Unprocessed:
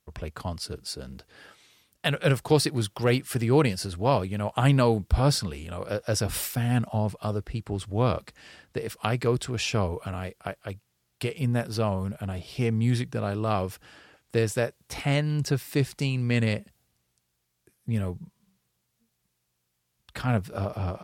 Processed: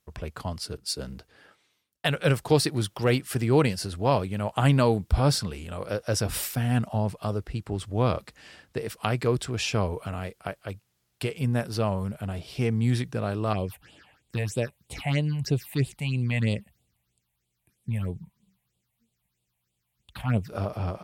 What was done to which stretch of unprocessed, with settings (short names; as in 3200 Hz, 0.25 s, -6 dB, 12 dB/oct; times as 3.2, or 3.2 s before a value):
0.77–2.06 three-band expander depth 70%
13.53–20.49 phaser stages 6, 3.1 Hz, lowest notch 340–1700 Hz